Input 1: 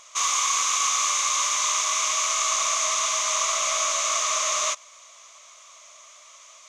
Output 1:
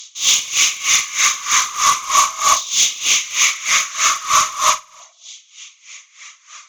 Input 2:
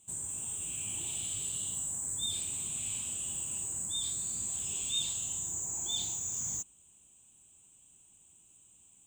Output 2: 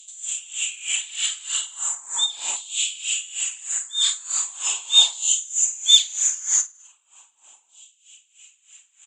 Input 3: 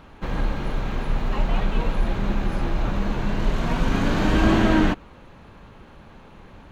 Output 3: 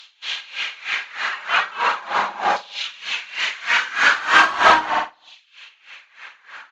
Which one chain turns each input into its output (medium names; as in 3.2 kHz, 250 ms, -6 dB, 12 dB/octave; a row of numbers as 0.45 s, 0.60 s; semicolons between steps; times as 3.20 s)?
resampled via 16 kHz; LFO high-pass saw down 0.39 Hz 780–3800 Hz; Chebyshev shaper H 5 -8 dB, 6 -42 dB, 8 -32 dB, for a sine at -6 dBFS; reverb removal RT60 0.72 s; de-hum 51.9 Hz, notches 4; on a send: flutter echo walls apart 8.7 m, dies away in 0.51 s; on the sum: logarithmic tremolo 3.2 Hz, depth 19 dB; peak normalisation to -1.5 dBFS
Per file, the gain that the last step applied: +4.0 dB, +11.0 dB, +6.5 dB